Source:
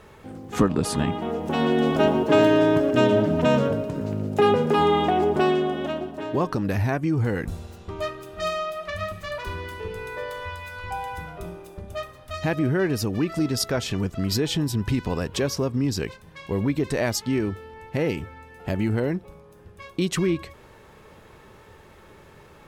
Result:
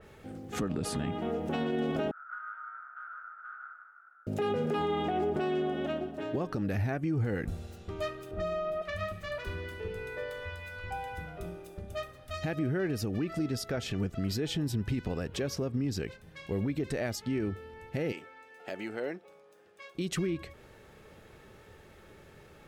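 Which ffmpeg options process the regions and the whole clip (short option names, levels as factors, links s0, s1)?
-filter_complex "[0:a]asettb=1/sr,asplit=3[s0][s1][s2];[s0]atrim=end=2.114[s3];[s1]atrim=start=2.11:end=4.27,asetpts=PTS-STARTPTS,afade=t=in:d=0.004:c=qsin,afade=t=out:st=2.156:d=0.004:c=qsin,aeval=exprs='abs(val(0))':c=same,asuperpass=centerf=1400:order=4:qfactor=7.4,aecho=1:1:149:0.531,atrim=end_sample=95256[s4];[s2]atrim=start=4.266[s5];[s3][s4]acrossfade=d=0.004:c1=hsin:c2=qsin[s6];[s6][s5]acrossfade=d=0.004:c1=qsin:c2=hsin,asettb=1/sr,asplit=3[s7][s8][s9];[s7]atrim=end=8.314[s10];[s8]atrim=start=8.31:end=8.82,asetpts=PTS-STARTPTS,afade=t=in:d=0.004:c=qsin,afade=t=out:st=0.506:d=0.004:c=qsin,tiltshelf=f=1300:g=9,acompressor=threshold=0.0631:ratio=6:attack=3.2:release=140:knee=1:detection=peak[s11];[s9]atrim=start=8.816[s12];[s10][s11]acrossfade=d=0.004:c1=hsin:c2=qsin[s13];[s13][s12]acrossfade=d=0.004:c1=qsin:c2=hsin,asettb=1/sr,asplit=3[s14][s15][s16];[s14]atrim=end=18.124[s17];[s15]atrim=start=18.12:end=19.95,asetpts=PTS-STARTPTS,afade=t=in:d=0.004:c=qsin,afade=t=out:st=1.826:d=0.004:c=qsin,highpass=470,equalizer=f=12000:t=o:w=0.53:g=-9[s18];[s16]atrim=start=19.946[s19];[s17][s18]acrossfade=d=0.004:c1=hsin:c2=qsin[s20];[s20][s19]acrossfade=d=0.004:c1=qsin:c2=hsin,equalizer=f=1000:t=o:w=0.26:g=-11,alimiter=limit=0.119:level=0:latency=1:release=83,adynamicequalizer=threshold=0.00398:dfrequency=3300:dqfactor=0.7:tfrequency=3300:tqfactor=0.7:attack=5:release=100:ratio=0.375:range=2.5:mode=cutabove:tftype=highshelf,volume=0.596"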